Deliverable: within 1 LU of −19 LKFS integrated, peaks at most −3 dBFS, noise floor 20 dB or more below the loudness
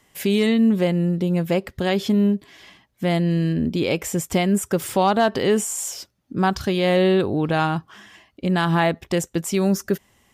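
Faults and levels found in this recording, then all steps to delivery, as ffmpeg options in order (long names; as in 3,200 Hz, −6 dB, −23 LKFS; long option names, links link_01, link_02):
integrated loudness −21.5 LKFS; sample peak −6.5 dBFS; target loudness −19.0 LKFS
→ -af "volume=2.5dB"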